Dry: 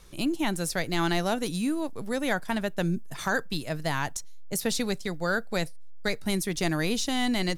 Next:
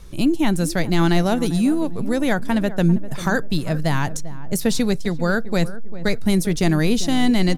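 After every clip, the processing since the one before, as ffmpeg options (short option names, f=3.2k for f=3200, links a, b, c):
-filter_complex "[0:a]lowshelf=f=350:g=10,asplit=2[a][b];[b]adelay=396,lowpass=f=990:p=1,volume=-14dB,asplit=2[c][d];[d]adelay=396,lowpass=f=990:p=1,volume=0.43,asplit=2[e][f];[f]adelay=396,lowpass=f=990:p=1,volume=0.43,asplit=2[g][h];[h]adelay=396,lowpass=f=990:p=1,volume=0.43[i];[a][c][e][g][i]amix=inputs=5:normalize=0,volume=3.5dB"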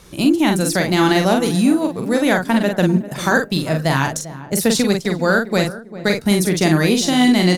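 -filter_complex "[0:a]highpass=f=230:p=1,asplit=2[a][b];[b]adelay=44,volume=-4.5dB[c];[a][c]amix=inputs=2:normalize=0,volume=5dB"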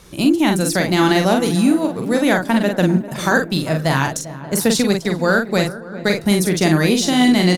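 -filter_complex "[0:a]asplit=2[a][b];[b]adelay=584,lowpass=f=1.3k:p=1,volume=-18dB,asplit=2[c][d];[d]adelay=584,lowpass=f=1.3k:p=1,volume=0.47,asplit=2[e][f];[f]adelay=584,lowpass=f=1.3k:p=1,volume=0.47,asplit=2[g][h];[h]adelay=584,lowpass=f=1.3k:p=1,volume=0.47[i];[a][c][e][g][i]amix=inputs=5:normalize=0"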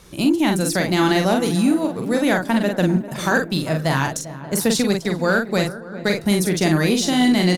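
-af "asoftclip=type=tanh:threshold=-3dB,volume=-2dB"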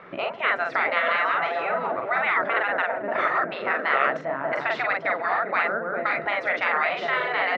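-af "afftfilt=real='re*lt(hypot(re,im),0.2)':imag='im*lt(hypot(re,im),0.2)':win_size=1024:overlap=0.75,highpass=260,equalizer=f=320:t=q:w=4:g=-4,equalizer=f=660:t=q:w=4:g=9,equalizer=f=1.3k:t=q:w=4:g=9,equalizer=f=2k:t=q:w=4:g=7,lowpass=f=2.3k:w=0.5412,lowpass=f=2.3k:w=1.3066,volume=4dB"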